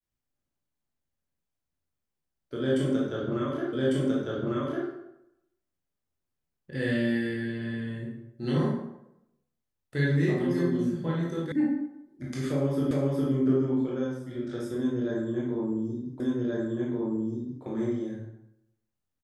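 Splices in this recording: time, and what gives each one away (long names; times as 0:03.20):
0:03.73: the same again, the last 1.15 s
0:11.52: cut off before it has died away
0:12.91: the same again, the last 0.41 s
0:16.20: the same again, the last 1.43 s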